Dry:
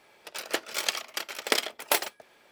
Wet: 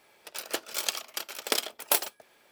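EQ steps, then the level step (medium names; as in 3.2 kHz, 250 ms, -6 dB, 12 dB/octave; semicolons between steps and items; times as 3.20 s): treble shelf 8.5 kHz +9 dB; dynamic bell 2 kHz, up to -6 dB, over -46 dBFS, Q 3.7; -3.0 dB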